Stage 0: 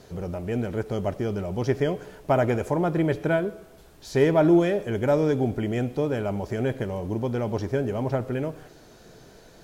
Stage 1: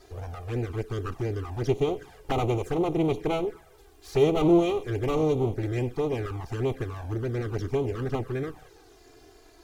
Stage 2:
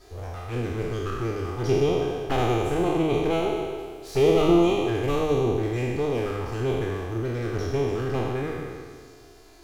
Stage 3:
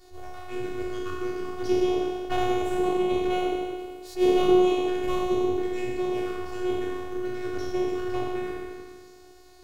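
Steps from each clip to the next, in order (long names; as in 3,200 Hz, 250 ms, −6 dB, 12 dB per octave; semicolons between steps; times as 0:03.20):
lower of the sound and its delayed copy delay 2.5 ms; flanger swept by the level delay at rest 3.3 ms, full sweep at −22 dBFS
peak hold with a decay on every bin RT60 1.90 s; hum removal 51.53 Hz, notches 40
phases set to zero 364 Hz; level that may rise only so fast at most 250 dB per second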